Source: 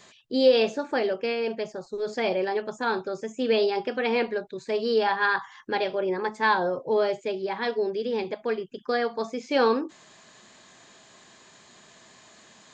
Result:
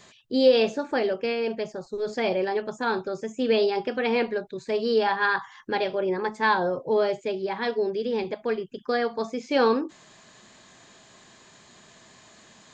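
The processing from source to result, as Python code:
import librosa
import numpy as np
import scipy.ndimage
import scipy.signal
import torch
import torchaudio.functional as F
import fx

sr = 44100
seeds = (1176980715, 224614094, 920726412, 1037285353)

y = fx.low_shelf(x, sr, hz=150.0, db=7.0)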